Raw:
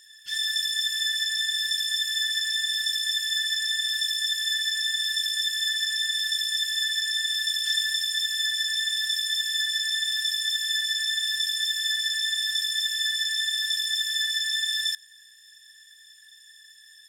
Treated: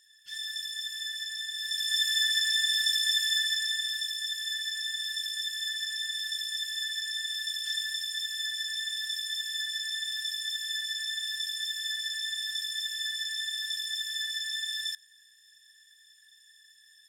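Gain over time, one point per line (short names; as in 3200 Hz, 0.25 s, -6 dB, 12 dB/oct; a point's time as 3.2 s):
1.54 s -9.5 dB
2 s 0 dB
3.25 s 0 dB
4.11 s -7 dB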